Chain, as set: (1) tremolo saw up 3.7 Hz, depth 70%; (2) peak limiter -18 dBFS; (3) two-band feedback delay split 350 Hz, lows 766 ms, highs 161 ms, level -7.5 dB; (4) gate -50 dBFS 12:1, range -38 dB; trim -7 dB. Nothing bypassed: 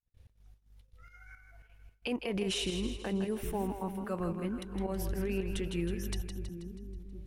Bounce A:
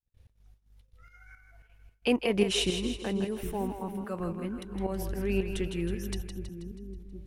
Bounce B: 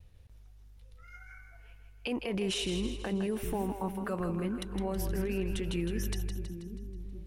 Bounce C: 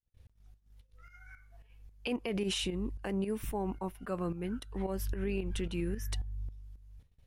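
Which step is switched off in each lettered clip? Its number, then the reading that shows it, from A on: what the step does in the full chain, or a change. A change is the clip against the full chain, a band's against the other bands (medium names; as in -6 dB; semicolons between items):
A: 2, crest factor change +5.5 dB; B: 1, momentary loudness spread change +1 LU; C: 3, crest factor change -2.0 dB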